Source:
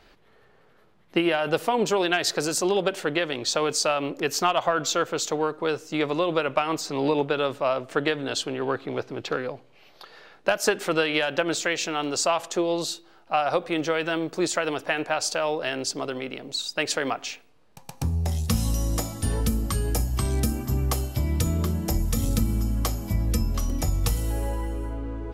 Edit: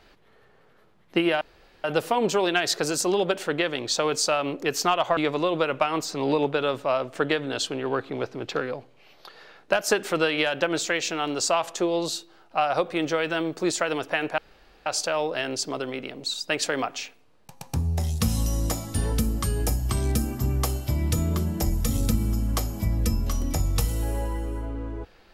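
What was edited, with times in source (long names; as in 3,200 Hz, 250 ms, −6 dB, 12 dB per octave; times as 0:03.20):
0:01.41: splice in room tone 0.43 s
0:04.74–0:05.93: remove
0:15.14: splice in room tone 0.48 s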